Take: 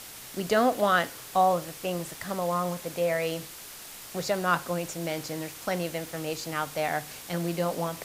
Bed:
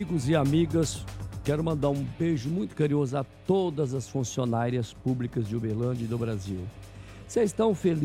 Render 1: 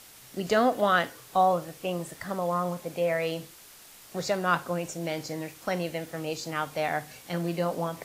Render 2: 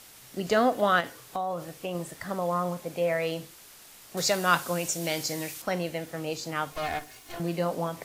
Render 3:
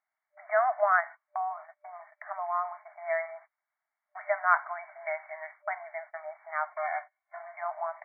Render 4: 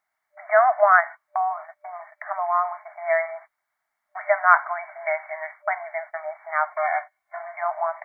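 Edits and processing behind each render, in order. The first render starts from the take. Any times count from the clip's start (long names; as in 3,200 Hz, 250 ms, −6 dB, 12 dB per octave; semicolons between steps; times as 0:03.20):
noise reduction from a noise print 7 dB
0:01.00–0:01.95: downward compressor 4 to 1, threshold −28 dBFS; 0:04.17–0:05.62: high-shelf EQ 2,600 Hz +11.5 dB; 0:06.72–0:07.40: lower of the sound and its delayed copy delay 2.8 ms
noise gate −38 dBFS, range −29 dB; brick-wall band-pass 600–2,300 Hz
level +8.5 dB; brickwall limiter −1 dBFS, peak gain reduction 1 dB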